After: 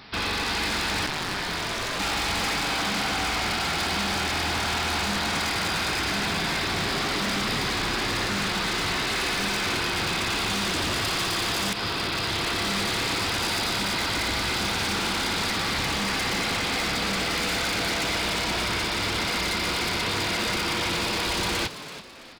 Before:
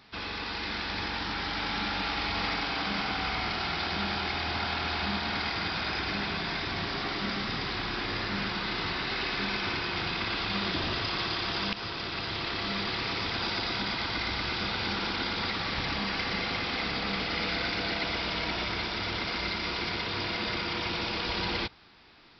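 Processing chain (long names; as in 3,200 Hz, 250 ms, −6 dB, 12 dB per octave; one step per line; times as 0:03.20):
in parallel at +2.5 dB: speech leveller 2 s
on the sum: wave folding −21.5 dBFS
0:01.06–0:01.98: ring modulation 69 Hz → 220 Hz
echo with shifted repeats 332 ms, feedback 37%, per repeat +89 Hz, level −13 dB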